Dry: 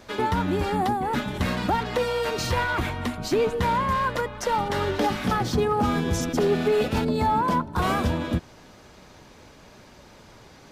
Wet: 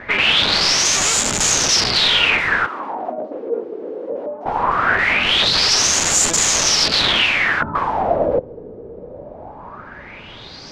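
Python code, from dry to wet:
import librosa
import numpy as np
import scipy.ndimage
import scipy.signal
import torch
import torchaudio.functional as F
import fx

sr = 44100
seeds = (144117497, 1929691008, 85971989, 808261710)

y = (np.mod(10.0 ** (25.5 / 20.0) * x + 1.0, 2.0) - 1.0) / 10.0 ** (25.5 / 20.0)
y = fx.filter_lfo_lowpass(y, sr, shape='sine', hz=0.2, low_hz=450.0, high_hz=7200.0, q=7.0)
y = fx.ladder_highpass(y, sr, hz=240.0, resonance_pct=45, at=(2.66, 4.46))
y = F.gain(torch.from_numpy(y), 9.0).numpy()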